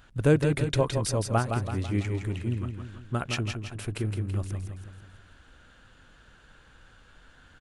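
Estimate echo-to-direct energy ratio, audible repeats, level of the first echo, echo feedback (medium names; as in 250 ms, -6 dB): -5.0 dB, 5, -6.0 dB, 49%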